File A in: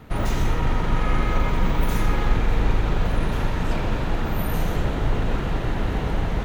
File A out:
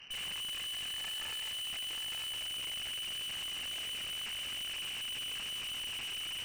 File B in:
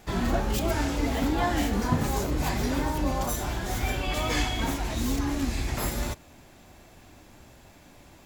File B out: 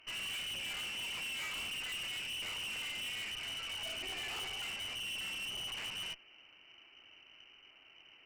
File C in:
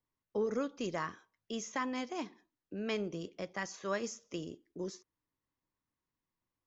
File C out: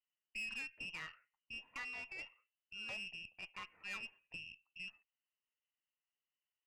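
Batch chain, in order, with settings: frequency inversion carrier 3 kHz; valve stage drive 32 dB, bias 0.5; trim -6.5 dB

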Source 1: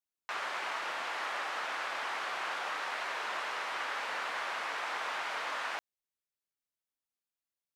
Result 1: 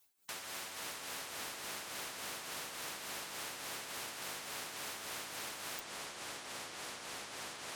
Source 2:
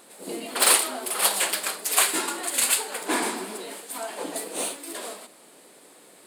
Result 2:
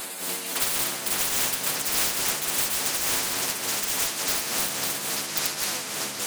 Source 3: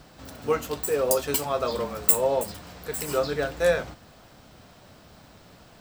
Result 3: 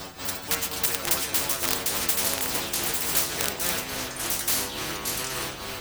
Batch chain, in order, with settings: treble shelf 7.6 kHz +6.5 dB; inharmonic resonator 90 Hz, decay 0.28 s, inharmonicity 0.002; on a send: repeats whose band climbs or falls 154 ms, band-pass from 240 Hz, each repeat 1.4 oct, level -10 dB; on the sum: ever faster or slower copies 378 ms, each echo -5 st, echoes 2; in parallel at -5 dB: integer overflow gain 22 dB; on the sum: tremolo 3.5 Hz, depth 73%; spectrum-flattening compressor 4:1; trim +5.5 dB

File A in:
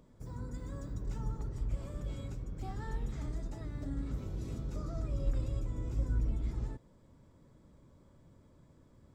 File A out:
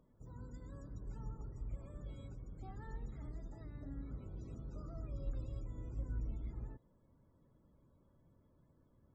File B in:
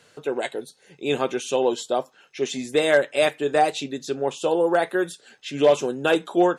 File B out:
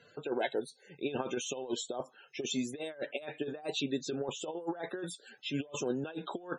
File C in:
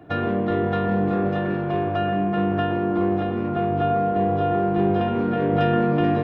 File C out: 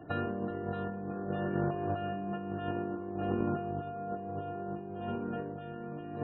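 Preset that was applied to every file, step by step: dynamic bell 2 kHz, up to -4 dB, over -48 dBFS, Q 4.6; compressor with a negative ratio -26 dBFS, ratio -0.5; loudest bins only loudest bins 64; trim -8.5 dB

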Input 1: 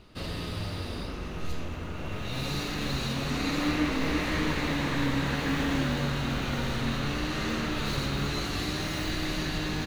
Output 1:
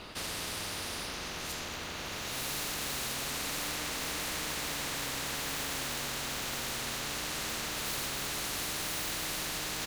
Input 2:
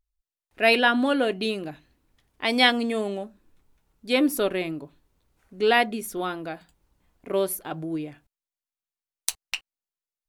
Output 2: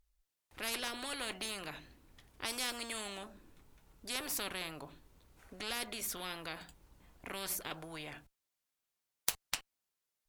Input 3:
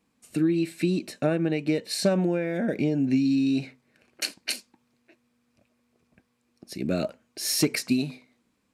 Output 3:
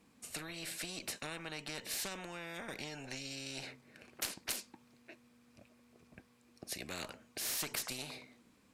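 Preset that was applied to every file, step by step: Chebyshev shaper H 6 -34 dB, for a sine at -2 dBFS; spectrum-flattening compressor 4:1; trim -7 dB

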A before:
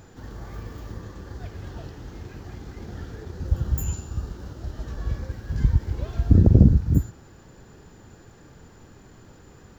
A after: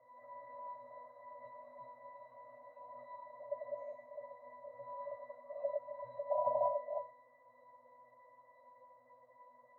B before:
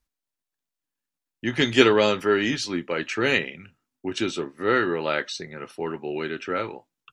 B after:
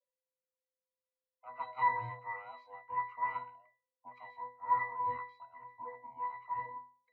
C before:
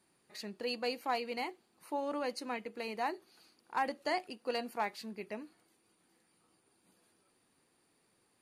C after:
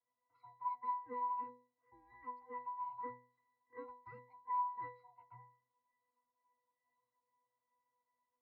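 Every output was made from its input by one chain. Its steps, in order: split-band scrambler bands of 500 Hz; three-band isolator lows -21 dB, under 530 Hz, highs -24 dB, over 2 kHz; pitch-class resonator B, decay 0.41 s; trim +10.5 dB

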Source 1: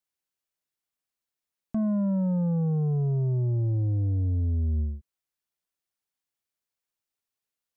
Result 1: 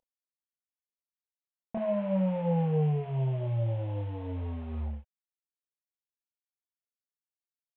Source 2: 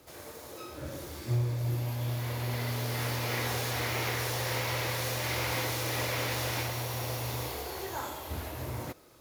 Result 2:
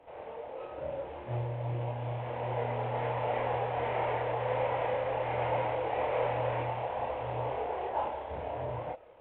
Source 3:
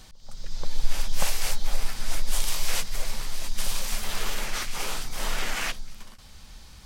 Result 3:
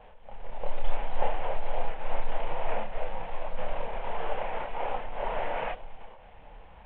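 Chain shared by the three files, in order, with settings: CVSD coder 16 kbps; high-order bell 660 Hz +13.5 dB 1.3 oct; chorus voices 4, 0.48 Hz, delay 29 ms, depth 3.7 ms; trim -2.5 dB

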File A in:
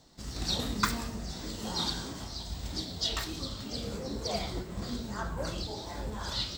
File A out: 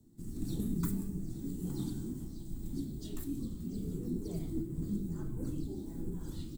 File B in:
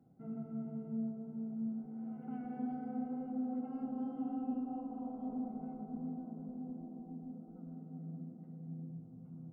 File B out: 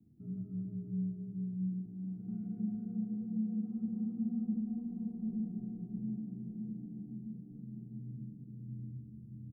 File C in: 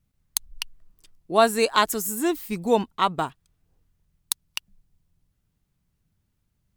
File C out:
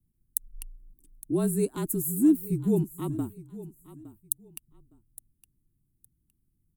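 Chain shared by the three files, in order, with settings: FFT filter 120 Hz 0 dB, 370 Hz +6 dB, 600 Hz -20 dB, 5.2 kHz -24 dB, 9.5 kHz 0 dB; frequency shift -38 Hz; on a send: feedback delay 863 ms, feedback 22%, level -17 dB; on the sum: trim -1 dB

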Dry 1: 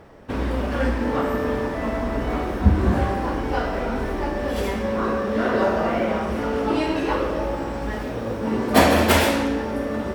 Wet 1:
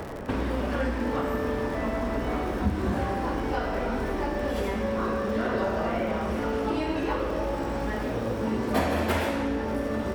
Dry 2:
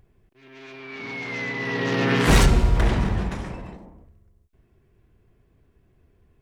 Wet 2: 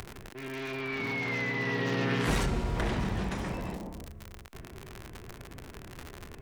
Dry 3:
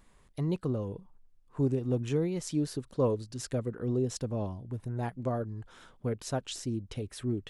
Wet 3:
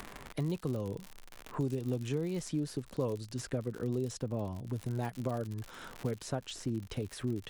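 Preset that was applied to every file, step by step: in parallel at -0.5 dB: compression, threshold -31 dBFS; on the sum: crackle 86 per s -33 dBFS; three bands compressed up and down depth 70%; trim -7.5 dB

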